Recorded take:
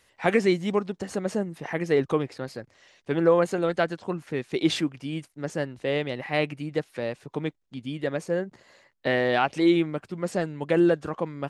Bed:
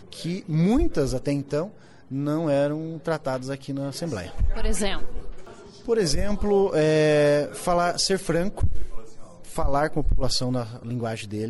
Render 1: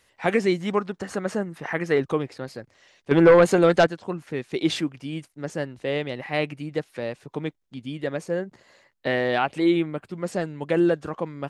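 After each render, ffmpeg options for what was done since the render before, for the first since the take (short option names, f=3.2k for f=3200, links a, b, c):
-filter_complex "[0:a]asettb=1/sr,asplit=3[a][b][c];[a]atrim=end=0.604[d];[b]atrim=start=0.6:end=1.98,asetpts=PTS-STARTPTS,afade=t=in:d=0.004:c=qsin,afade=t=out:st=1.376:d=0.004:c=qsin,equalizer=f=1.4k:t=o:w=1.1:g=7.5[e];[c]atrim=start=1.976[f];[d][e]acrossfade=d=0.004:c1=hsin:c2=qsin[g];[g][f]acrossfade=d=0.004:c1=qsin:c2=hsin,asettb=1/sr,asplit=3[h][i][j];[h]atrim=end=3.114[k];[i]atrim=start=3.11:end=3.87,asetpts=PTS-STARTPTS,afade=t=in:d=0.004:c=qsin,afade=t=out:st=0.756:d=0.004:c=qsin,aeval=exprs='0.376*sin(PI/2*1.78*val(0)/0.376)':c=same[l];[j]atrim=start=3.866[m];[k][l]acrossfade=d=0.004:c1=hsin:c2=qsin[n];[n][m]acrossfade=d=0.004:c1=qsin:c2=hsin,asettb=1/sr,asplit=3[o][p][q];[o]atrim=end=9.384[r];[p]atrim=start=9.38:end=10.09,asetpts=PTS-STARTPTS,afade=t=in:d=0.004:c=qsin,afade=t=out:st=0.706:d=0.004:c=qsin,equalizer=f=5.7k:t=o:w=0.47:g=-9.5[s];[q]atrim=start=10.086[t];[r][s]acrossfade=d=0.004:c1=hsin:c2=qsin[u];[u][t]acrossfade=d=0.004:c1=qsin:c2=hsin"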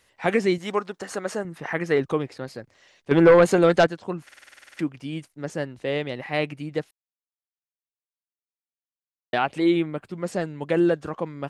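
-filter_complex "[0:a]asettb=1/sr,asplit=3[a][b][c];[a]atrim=end=0.584[d];[b]atrim=start=0.58:end=1.45,asetpts=PTS-STARTPTS,afade=t=in:d=0.004:c=qsin,afade=t=out:st=0.866:d=0.004:c=qsin,bass=f=250:g=-10,treble=f=4k:g=4[e];[c]atrim=start=1.446[f];[d][e]acrossfade=d=0.004:c1=hsin:c2=qsin[g];[g][f]acrossfade=d=0.004:c1=qsin:c2=hsin,asplit=14[h][i][j][k][l][m][n][o][p][q][r][s][t][u];[h]atrim=end=4.292[v];[i]atrim=start=4.238:end=4.292[w];[j]atrim=start=4.238:end=4.292[x];[k]atrim=start=4.238:end=4.292[y];[l]atrim=start=4.238:end=4.292[z];[m]atrim=start=4.238:end=4.292[aa];[n]atrim=start=4.238:end=4.292[ab];[o]atrim=start=4.238:end=4.292[ac];[p]atrim=start=4.238:end=4.292[ad];[q]atrim=start=4.238:end=4.292[ae];[r]atrim=start=4.238:end=4.292[af];[s]atrim=start=4.788:end=6.91,asetpts=PTS-STARTPTS,afade=t=out:st=2.118:d=0.004:c=hsin[ag];[t]atrim=start=6.91:end=9.33,asetpts=PTS-STARTPTS,volume=0[ah];[u]atrim=start=9.33,asetpts=PTS-STARTPTS,afade=t=in:d=0.004:c=hsin[ai];[v][w]acrossfade=d=0.004:c1=hsin:c2=hsin[aj];[aj][x]acrossfade=d=0.004:c1=hsin:c2=hsin[ak];[ak][y]acrossfade=d=0.004:c1=hsin:c2=hsin[al];[al][z]acrossfade=d=0.004:c1=hsin:c2=hsin[am];[am][aa]acrossfade=d=0.004:c1=hsin:c2=hsin[an];[an][ab]acrossfade=d=0.004:c1=hsin:c2=hsin[ao];[ao][ac]acrossfade=d=0.004:c1=hsin:c2=hsin[ap];[ap][ad]acrossfade=d=0.004:c1=hsin:c2=hsin[aq];[aq][ae]acrossfade=d=0.004:c1=hsin:c2=hsin[ar];[ar][af]acrossfade=d=0.004:c1=hsin:c2=hsin[as];[ag][ah][ai]concat=n=3:v=0:a=1[at];[as][at]acrossfade=d=0.004:c1=hsin:c2=hsin"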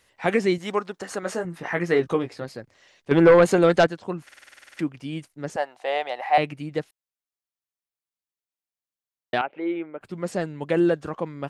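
-filter_complex "[0:a]asettb=1/sr,asplit=3[a][b][c];[a]atrim=end=1.214[d];[b]atrim=start=1.21:end=2.44,asetpts=PTS-STARTPTS,afade=t=in:d=0.004:c=qsin,afade=t=out:st=1.226:d=0.004:c=qsin,asplit=2[e][f];[f]adelay=17,volume=-6dB[g];[e][g]amix=inputs=2:normalize=0,atrim=end_sample=54243[h];[c]atrim=start=2.436[i];[d][h]acrossfade=d=0.004:c1=hsin:c2=qsin[j];[j][i]acrossfade=d=0.004:c1=qsin:c2=hsin,asettb=1/sr,asplit=3[k][l][m];[k]atrim=end=5.564[n];[l]atrim=start=5.56:end=6.38,asetpts=PTS-STARTPTS,afade=t=in:d=0.004:c=qsin,afade=t=out:st=0.816:d=0.004:c=qsin,highpass=f=750:t=q:w=5.9[o];[m]atrim=start=6.376[p];[n][o]acrossfade=d=0.004:c1=hsin:c2=qsin[q];[q][p]acrossfade=d=0.004:c1=qsin:c2=hsin,asettb=1/sr,asplit=3[r][s][t];[r]atrim=end=9.414[u];[s]atrim=start=9.41:end=10.01,asetpts=PTS-STARTPTS,afade=t=in:d=0.004:c=qsin,afade=t=out:st=0.596:d=0.004:c=qsin,highpass=480,equalizer=f=720:t=q:w=4:g=-4,equalizer=f=1.1k:t=q:w=4:g=-9,equalizer=f=1.8k:t=q:w=4:g=-8,lowpass=f=2.1k:w=0.5412,lowpass=f=2.1k:w=1.3066[v];[t]atrim=start=10.006[w];[u][v]acrossfade=d=0.004:c1=hsin:c2=qsin[x];[x][w]acrossfade=d=0.004:c1=qsin:c2=hsin"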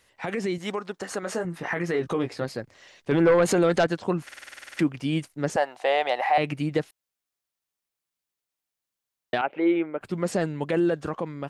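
-af "alimiter=limit=-19dB:level=0:latency=1:release=62,dynaudnorm=f=940:g=5:m=6dB"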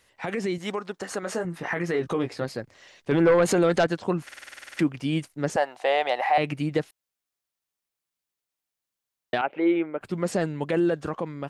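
-af anull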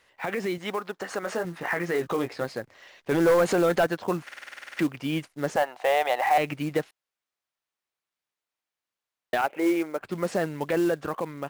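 -filter_complex "[0:a]asplit=2[a][b];[b]highpass=f=720:p=1,volume=8dB,asoftclip=type=tanh:threshold=-12.5dB[c];[a][c]amix=inputs=2:normalize=0,lowpass=f=2.2k:p=1,volume=-6dB,acrusher=bits=5:mode=log:mix=0:aa=0.000001"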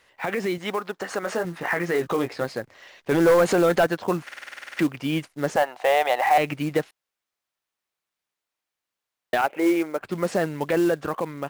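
-af "volume=3dB"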